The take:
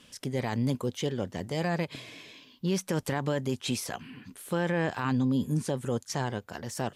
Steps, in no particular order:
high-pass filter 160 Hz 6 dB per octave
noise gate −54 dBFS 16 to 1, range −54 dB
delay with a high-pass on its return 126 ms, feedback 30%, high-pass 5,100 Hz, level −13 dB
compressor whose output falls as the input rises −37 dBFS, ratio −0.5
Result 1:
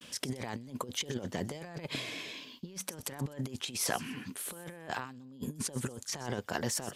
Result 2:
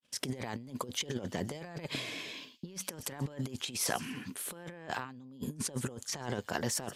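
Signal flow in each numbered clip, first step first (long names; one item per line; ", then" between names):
high-pass filter, then compressor whose output falls as the input rises, then noise gate, then delay with a high-pass on its return
high-pass filter, then noise gate, then delay with a high-pass on its return, then compressor whose output falls as the input rises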